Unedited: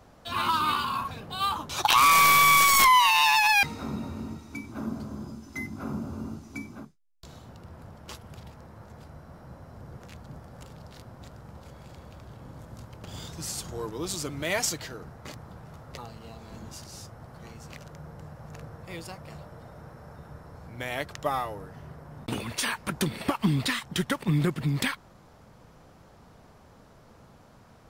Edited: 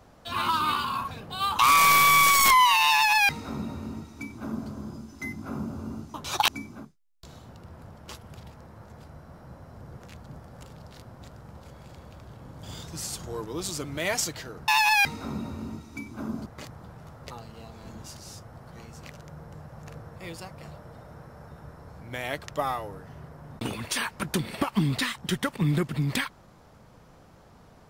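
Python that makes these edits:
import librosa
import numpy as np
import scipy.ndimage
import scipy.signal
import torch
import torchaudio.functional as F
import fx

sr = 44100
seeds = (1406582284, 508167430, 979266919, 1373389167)

y = fx.edit(x, sr, fx.move(start_s=1.59, length_s=0.34, to_s=6.48),
    fx.duplicate(start_s=3.26, length_s=1.78, to_s=15.13),
    fx.cut(start_s=12.63, length_s=0.45), tone=tone)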